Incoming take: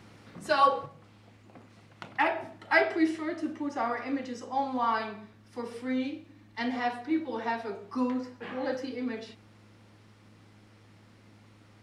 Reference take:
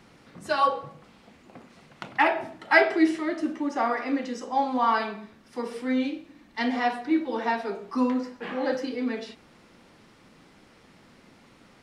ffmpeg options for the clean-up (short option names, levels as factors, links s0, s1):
-af "bandreject=f=105:t=h:w=4,bandreject=f=210:t=h:w=4,bandreject=f=315:t=h:w=4,asetnsamples=n=441:p=0,asendcmd='0.86 volume volume 5dB',volume=1"